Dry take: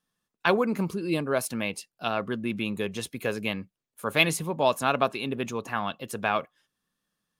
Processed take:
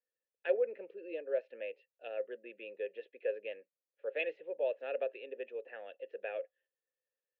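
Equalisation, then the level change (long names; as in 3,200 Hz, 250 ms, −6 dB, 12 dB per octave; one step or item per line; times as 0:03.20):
formant filter e
four-pole ladder high-pass 330 Hz, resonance 40%
low-pass filter 3,200 Hz 24 dB per octave
+3.5 dB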